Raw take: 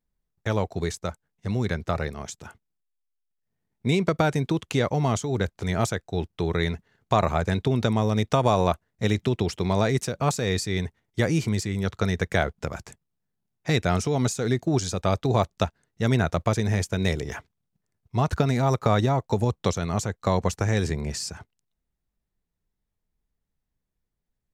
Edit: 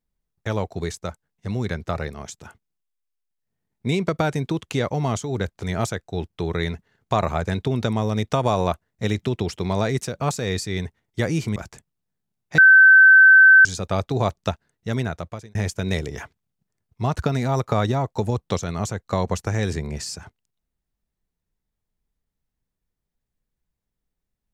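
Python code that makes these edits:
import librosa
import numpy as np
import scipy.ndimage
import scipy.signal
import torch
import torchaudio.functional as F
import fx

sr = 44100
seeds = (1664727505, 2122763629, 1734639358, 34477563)

y = fx.edit(x, sr, fx.cut(start_s=11.56, length_s=1.14),
    fx.bleep(start_s=13.72, length_s=1.07, hz=1540.0, db=-7.0),
    fx.fade_out_span(start_s=15.58, length_s=1.11, curve='qsin'), tone=tone)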